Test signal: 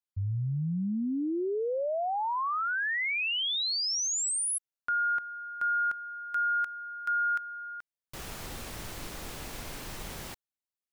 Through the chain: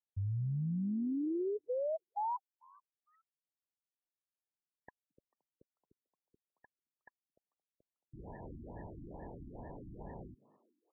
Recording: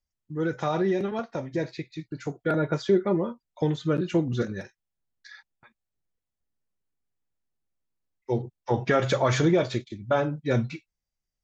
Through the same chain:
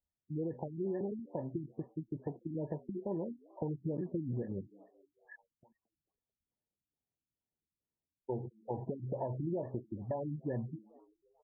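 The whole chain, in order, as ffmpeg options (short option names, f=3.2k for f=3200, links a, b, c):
-filter_complex "[0:a]highpass=f=64:p=1,acompressor=threshold=-30dB:ratio=6:attack=6.6:release=155:knee=1:detection=rms,asuperstop=centerf=1300:order=20:qfactor=1.9,asplit=2[a][b];[b]asplit=4[c][d][e][f];[c]adelay=221,afreqshift=94,volume=-22.5dB[g];[d]adelay=442,afreqshift=188,volume=-27.7dB[h];[e]adelay=663,afreqshift=282,volume=-32.9dB[i];[f]adelay=884,afreqshift=376,volume=-38.1dB[j];[g][h][i][j]amix=inputs=4:normalize=0[k];[a][k]amix=inputs=2:normalize=0,afftfilt=real='re*lt(b*sr/1024,330*pow(1900/330,0.5+0.5*sin(2*PI*2.3*pts/sr)))':imag='im*lt(b*sr/1024,330*pow(1900/330,0.5+0.5*sin(2*PI*2.3*pts/sr)))':win_size=1024:overlap=0.75,volume=-2.5dB"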